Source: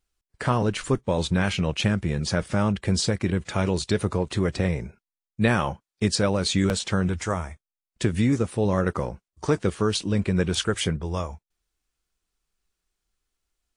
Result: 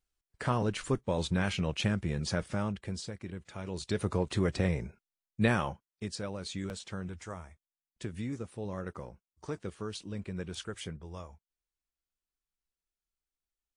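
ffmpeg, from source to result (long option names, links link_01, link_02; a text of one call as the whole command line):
ffmpeg -i in.wav -af "volume=5dB,afade=type=out:start_time=2.31:duration=0.72:silence=0.316228,afade=type=in:start_time=3.64:duration=0.54:silence=0.251189,afade=type=out:start_time=5.4:duration=0.65:silence=0.298538" out.wav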